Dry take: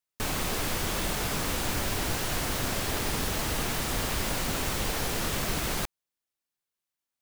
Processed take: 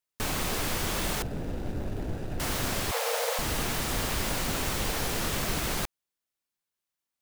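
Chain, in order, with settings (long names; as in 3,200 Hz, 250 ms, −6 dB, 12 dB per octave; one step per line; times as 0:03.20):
0:01.22–0:02.40: running median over 41 samples
0:02.91–0:03.39: frequency shifter +450 Hz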